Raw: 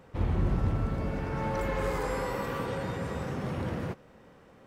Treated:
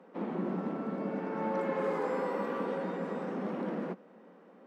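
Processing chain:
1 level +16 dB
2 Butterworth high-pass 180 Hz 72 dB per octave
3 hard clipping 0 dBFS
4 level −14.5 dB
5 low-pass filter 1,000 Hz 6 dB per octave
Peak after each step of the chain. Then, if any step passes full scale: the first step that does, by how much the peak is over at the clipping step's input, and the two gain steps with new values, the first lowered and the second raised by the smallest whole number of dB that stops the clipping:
−0.5, −5.0, −5.0, −19.5, −20.5 dBFS
no step passes full scale

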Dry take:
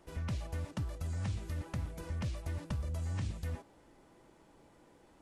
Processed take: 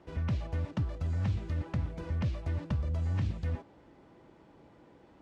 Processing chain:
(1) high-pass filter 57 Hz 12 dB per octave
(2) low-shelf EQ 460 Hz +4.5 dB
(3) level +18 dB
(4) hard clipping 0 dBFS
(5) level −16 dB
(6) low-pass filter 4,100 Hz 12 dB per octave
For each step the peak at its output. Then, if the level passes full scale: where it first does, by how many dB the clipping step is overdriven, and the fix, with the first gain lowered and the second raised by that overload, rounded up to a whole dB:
−26.0, −22.5, −4.5, −4.5, −20.5, −20.5 dBFS
no step passes full scale

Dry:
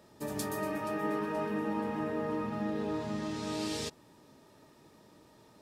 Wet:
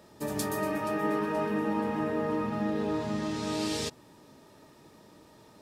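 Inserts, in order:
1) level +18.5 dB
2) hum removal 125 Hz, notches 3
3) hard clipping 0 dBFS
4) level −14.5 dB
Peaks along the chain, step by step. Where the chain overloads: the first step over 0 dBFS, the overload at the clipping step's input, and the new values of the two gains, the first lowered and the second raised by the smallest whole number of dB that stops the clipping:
−3.0, −3.0, −3.0, −17.5 dBFS
no step passes full scale

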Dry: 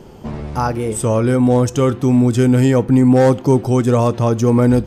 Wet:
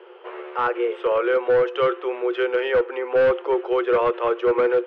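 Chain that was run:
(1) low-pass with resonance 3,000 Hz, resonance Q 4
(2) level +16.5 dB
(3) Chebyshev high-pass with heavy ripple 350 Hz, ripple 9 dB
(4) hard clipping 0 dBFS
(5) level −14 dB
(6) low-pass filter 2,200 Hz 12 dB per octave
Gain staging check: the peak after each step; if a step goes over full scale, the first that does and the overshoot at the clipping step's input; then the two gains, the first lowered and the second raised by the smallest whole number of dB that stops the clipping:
−3.5, +13.0, +9.5, 0.0, −14.0, −13.5 dBFS
step 2, 9.5 dB
step 2 +6.5 dB, step 5 −4 dB

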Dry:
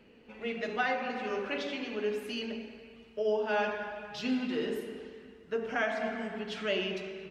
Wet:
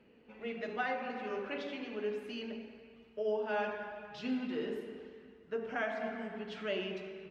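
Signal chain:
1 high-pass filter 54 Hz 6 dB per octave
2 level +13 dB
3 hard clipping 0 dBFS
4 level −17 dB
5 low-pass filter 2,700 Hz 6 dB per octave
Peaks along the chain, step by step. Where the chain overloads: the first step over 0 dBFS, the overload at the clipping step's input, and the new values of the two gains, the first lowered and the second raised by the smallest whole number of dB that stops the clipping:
−17.5, −4.5, −4.5, −21.5, −22.5 dBFS
no step passes full scale

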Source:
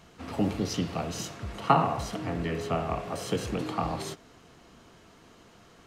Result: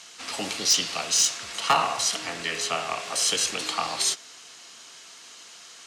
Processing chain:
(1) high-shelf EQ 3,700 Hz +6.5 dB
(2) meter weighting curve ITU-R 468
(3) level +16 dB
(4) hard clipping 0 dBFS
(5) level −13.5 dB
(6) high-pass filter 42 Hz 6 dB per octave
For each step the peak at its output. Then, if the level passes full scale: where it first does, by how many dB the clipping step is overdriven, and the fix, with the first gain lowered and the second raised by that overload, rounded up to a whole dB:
−5.5, −6.5, +9.5, 0.0, −13.5, −13.0 dBFS
step 3, 9.5 dB
step 3 +6 dB, step 5 −3.5 dB

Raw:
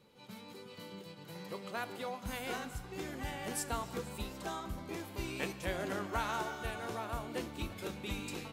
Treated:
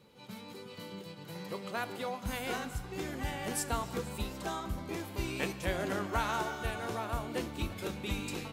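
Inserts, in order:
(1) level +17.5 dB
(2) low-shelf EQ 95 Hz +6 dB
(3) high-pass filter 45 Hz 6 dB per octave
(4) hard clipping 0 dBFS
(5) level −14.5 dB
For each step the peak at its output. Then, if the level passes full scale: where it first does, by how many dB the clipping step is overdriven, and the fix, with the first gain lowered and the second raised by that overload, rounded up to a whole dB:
−3.0, −2.5, −2.5, −2.5, −17.0 dBFS
no step passes full scale

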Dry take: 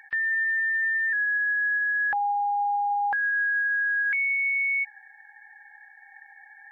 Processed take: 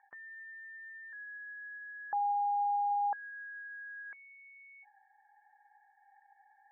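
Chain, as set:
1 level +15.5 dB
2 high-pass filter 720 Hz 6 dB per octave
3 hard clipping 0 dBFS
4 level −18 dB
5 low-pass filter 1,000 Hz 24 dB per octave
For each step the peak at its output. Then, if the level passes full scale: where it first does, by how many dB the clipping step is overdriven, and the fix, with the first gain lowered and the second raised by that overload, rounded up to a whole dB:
−5.5, −6.0, −6.0, −24.0, −27.0 dBFS
no step passes full scale

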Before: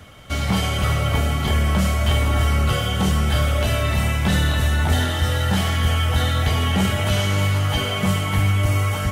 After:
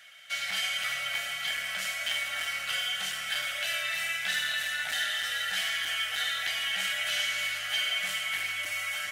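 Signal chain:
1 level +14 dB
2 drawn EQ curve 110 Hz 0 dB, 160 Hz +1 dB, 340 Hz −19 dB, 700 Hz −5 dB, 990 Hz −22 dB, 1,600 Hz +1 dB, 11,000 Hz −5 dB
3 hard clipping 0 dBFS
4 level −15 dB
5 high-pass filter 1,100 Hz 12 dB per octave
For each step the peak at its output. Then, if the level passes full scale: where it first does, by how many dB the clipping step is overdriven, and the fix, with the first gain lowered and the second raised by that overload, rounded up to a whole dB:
+4.5, +5.0, 0.0, −15.0, −17.5 dBFS
step 1, 5.0 dB
step 1 +9 dB, step 4 −10 dB

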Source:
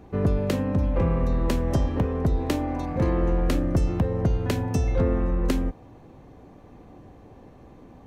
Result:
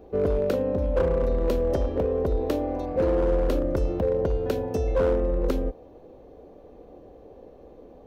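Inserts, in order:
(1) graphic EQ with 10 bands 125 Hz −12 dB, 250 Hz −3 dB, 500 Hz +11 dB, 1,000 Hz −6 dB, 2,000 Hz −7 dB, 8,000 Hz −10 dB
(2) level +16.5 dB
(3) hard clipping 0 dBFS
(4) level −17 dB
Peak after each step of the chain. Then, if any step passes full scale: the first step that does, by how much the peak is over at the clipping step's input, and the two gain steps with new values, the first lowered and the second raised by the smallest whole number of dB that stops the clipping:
−8.0, +8.5, 0.0, −17.0 dBFS
step 2, 8.5 dB
step 2 +7.5 dB, step 4 −8 dB

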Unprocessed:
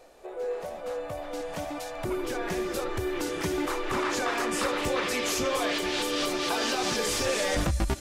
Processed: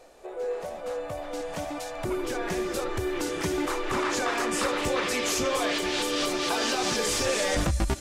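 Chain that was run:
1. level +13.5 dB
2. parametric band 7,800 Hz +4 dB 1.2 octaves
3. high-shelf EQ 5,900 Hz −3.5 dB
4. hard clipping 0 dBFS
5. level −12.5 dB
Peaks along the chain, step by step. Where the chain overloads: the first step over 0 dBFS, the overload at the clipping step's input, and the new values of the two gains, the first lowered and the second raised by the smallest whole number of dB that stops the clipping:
−2.5, −2.0, −2.5, −2.5, −15.0 dBFS
no step passes full scale

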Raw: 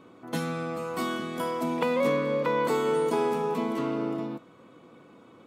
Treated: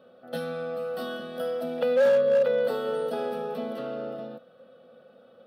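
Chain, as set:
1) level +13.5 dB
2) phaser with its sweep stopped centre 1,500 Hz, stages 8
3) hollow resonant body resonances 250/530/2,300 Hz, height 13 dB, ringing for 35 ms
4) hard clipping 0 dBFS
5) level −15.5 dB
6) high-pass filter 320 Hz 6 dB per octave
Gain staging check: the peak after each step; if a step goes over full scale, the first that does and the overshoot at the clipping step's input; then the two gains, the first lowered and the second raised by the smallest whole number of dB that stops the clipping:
+1.5, −3.0, +5.5, 0.0, −15.5, −13.5 dBFS
step 1, 5.5 dB
step 1 +7.5 dB, step 5 −9.5 dB

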